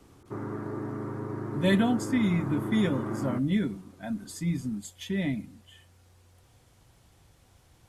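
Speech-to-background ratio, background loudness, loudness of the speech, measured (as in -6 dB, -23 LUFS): 5.5 dB, -35.0 LUFS, -29.5 LUFS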